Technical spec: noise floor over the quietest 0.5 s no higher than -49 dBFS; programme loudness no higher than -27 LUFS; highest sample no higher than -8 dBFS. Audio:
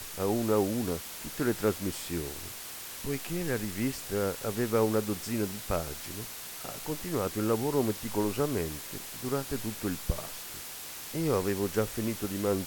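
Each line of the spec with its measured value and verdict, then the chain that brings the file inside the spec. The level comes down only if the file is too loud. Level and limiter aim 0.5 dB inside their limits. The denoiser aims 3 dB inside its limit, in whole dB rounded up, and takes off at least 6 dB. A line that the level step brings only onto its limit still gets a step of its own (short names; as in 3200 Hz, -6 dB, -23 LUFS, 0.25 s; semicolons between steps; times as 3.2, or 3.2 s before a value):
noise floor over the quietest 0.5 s -42 dBFS: fail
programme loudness -32.0 LUFS: OK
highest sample -14.0 dBFS: OK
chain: denoiser 10 dB, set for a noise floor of -42 dBFS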